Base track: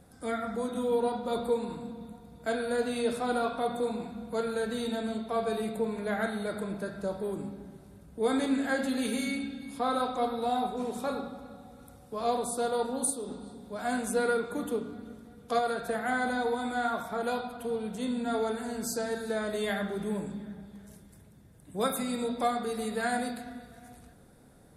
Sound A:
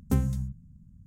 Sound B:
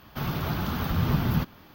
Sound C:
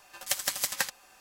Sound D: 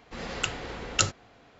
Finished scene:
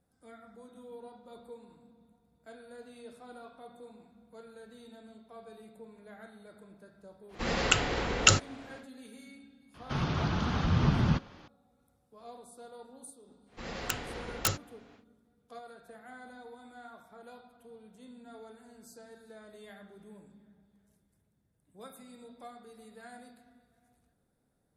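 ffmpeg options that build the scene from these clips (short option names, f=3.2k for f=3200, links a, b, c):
-filter_complex "[4:a]asplit=2[a][b];[0:a]volume=-19.5dB[c];[a]alimiter=level_in=9dB:limit=-1dB:release=50:level=0:latency=1[d];[2:a]aresample=16000,aresample=44100[e];[b]aeval=exprs='(mod(5.01*val(0)+1,2)-1)/5.01':c=same[f];[d]atrim=end=1.59,asetpts=PTS-STARTPTS,volume=-3dB,afade=t=in:d=0.1,afade=t=out:st=1.49:d=0.1,adelay=7280[g];[e]atrim=end=1.74,asetpts=PTS-STARTPTS,volume=-1.5dB,afade=t=in:d=0.004:c=hsin,afade=t=out:st=1.736:d=0.004:c=hsin,adelay=9740[h];[f]atrim=end=1.59,asetpts=PTS-STARTPTS,volume=-3.5dB,afade=t=in:d=0.1,afade=t=out:st=1.49:d=0.1,adelay=13460[i];[c][g][h][i]amix=inputs=4:normalize=0"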